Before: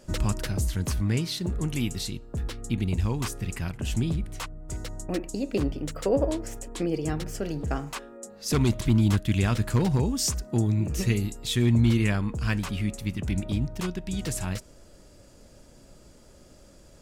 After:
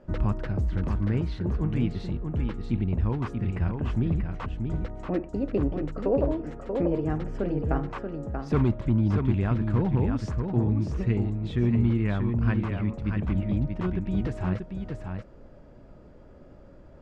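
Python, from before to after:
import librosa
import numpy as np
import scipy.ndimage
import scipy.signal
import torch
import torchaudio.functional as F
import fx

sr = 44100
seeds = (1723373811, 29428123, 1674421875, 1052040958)

p1 = scipy.signal.sosfilt(scipy.signal.butter(2, 1500.0, 'lowpass', fs=sr, output='sos'), x)
p2 = fx.rider(p1, sr, range_db=4, speed_s=0.5)
p3 = p1 + (p2 * librosa.db_to_amplitude(1.5))
p4 = p3 + 10.0 ** (-5.5 / 20.0) * np.pad(p3, (int(634 * sr / 1000.0), 0))[:len(p3)]
y = p4 * librosa.db_to_amplitude(-7.0)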